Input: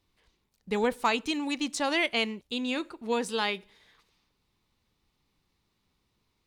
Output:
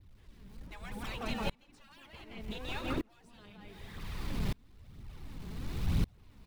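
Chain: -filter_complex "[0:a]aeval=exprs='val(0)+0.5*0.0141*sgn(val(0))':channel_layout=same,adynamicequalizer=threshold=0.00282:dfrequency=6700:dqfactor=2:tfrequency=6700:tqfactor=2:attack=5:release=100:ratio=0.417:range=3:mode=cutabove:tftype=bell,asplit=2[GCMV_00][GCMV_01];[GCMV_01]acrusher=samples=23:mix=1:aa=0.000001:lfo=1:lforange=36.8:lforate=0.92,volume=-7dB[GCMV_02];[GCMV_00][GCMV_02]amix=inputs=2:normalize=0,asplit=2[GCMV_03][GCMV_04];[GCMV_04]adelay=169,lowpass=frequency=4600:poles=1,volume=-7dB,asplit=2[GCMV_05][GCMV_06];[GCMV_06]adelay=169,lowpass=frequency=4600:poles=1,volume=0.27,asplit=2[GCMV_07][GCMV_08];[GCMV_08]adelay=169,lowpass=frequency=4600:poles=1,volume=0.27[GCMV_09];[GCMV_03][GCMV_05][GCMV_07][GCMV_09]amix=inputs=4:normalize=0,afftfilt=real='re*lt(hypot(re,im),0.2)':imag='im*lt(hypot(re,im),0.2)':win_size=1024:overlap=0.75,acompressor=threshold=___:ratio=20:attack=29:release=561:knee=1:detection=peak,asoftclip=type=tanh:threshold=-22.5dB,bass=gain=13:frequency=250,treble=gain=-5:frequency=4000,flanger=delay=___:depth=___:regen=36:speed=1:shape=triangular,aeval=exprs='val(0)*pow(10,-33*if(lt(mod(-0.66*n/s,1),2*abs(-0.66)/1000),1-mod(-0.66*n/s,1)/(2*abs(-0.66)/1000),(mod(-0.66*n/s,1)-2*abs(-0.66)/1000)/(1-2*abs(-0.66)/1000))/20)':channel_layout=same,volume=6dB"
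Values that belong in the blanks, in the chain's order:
-32dB, 0.2, 5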